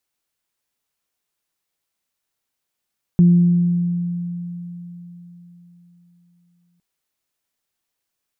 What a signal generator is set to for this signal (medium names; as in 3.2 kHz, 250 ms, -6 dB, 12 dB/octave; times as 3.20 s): additive tone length 3.61 s, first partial 174 Hz, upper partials -19.5 dB, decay 4.02 s, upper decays 1.65 s, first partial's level -7.5 dB